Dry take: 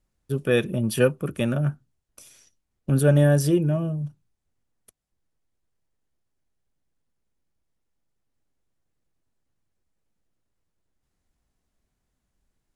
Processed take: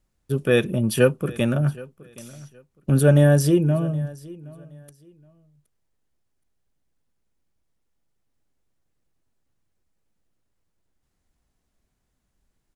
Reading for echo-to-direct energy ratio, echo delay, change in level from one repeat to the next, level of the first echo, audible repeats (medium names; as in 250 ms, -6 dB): -21.0 dB, 770 ms, -13.0 dB, -21.0 dB, 2